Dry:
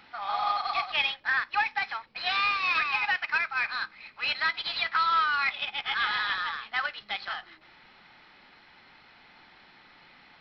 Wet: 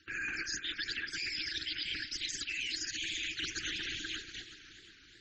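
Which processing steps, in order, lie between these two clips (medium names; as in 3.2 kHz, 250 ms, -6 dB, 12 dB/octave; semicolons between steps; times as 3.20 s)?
companding laws mixed up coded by mu; on a send: repeats whose band climbs or falls 478 ms, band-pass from 580 Hz, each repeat 0.7 oct, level -8 dB; on the sum: LPC vocoder at 8 kHz whisper; graphic EQ with 31 bands 100 Hz -4 dB, 160 Hz +12 dB, 315 Hz -9 dB, 500 Hz -6 dB, 800 Hz +5 dB; loudest bins only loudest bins 64; reverse; compression 16:1, threshold -38 dBFS, peak gain reduction 20 dB; reverse; speed mistake 7.5 ips tape played at 15 ips; gate -45 dBFS, range -17 dB; modulated delay 367 ms, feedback 56%, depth 73 cents, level -15 dB; trim +3.5 dB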